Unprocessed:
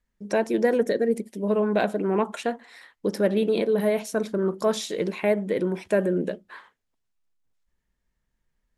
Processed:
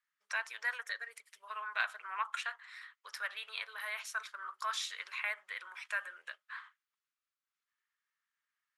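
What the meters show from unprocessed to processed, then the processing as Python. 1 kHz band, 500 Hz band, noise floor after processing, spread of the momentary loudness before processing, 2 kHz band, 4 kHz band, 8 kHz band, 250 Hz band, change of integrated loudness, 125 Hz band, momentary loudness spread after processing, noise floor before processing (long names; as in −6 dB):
−8.5 dB, −34.0 dB, below −85 dBFS, 8 LU, −1.0 dB, −4.5 dB, −8.0 dB, below −40 dB, −14.5 dB, below −40 dB, 12 LU, −78 dBFS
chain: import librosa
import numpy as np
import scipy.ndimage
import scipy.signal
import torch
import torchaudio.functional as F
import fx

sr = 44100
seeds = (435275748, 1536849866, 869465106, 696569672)

y = scipy.signal.sosfilt(scipy.signal.ellip(4, 1.0, 80, 1200.0, 'highpass', fs=sr, output='sos'), x)
y = fx.tilt_eq(y, sr, slope=-3.5)
y = F.gain(torch.from_numpy(y), 2.5).numpy()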